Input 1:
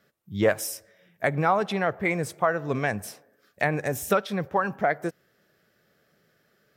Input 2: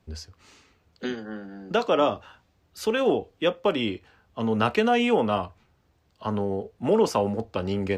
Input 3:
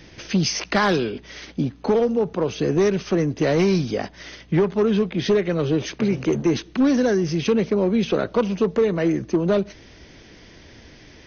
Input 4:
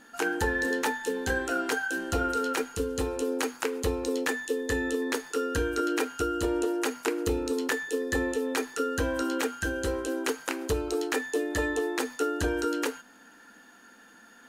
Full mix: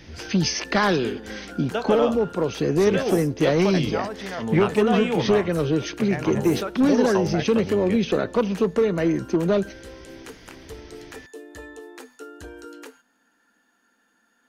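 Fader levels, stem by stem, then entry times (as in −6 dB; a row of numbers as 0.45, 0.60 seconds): −8.0, −3.5, −1.0, −12.0 decibels; 2.50, 0.00, 0.00, 0.00 seconds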